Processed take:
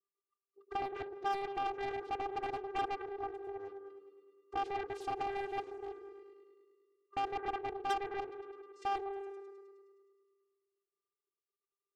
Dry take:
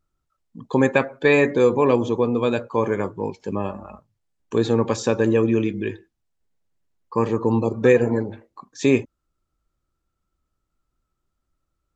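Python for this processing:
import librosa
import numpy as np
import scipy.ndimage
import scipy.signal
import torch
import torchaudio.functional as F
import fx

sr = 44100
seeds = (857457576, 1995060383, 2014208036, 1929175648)

y = fx.spec_quant(x, sr, step_db=15)
y = fx.highpass(y, sr, hz=250.0, slope=6)
y = fx.high_shelf(y, sr, hz=4600.0, db=-3.0)
y = y + 0.32 * np.pad(y, (int(2.1 * sr / 1000.0), 0))[:len(y)]
y = fx.level_steps(y, sr, step_db=12)
y = fx.vocoder(y, sr, bands=8, carrier='square', carrier_hz=397.0)
y = 10.0 ** (-26.0 / 20.0) * np.tanh(y / 10.0 ** (-26.0 / 20.0))
y = fx.echo_opening(y, sr, ms=104, hz=750, octaves=1, feedback_pct=70, wet_db=-6)
y = fx.doppler_dist(y, sr, depth_ms=0.99)
y = y * 10.0 ** (-3.5 / 20.0)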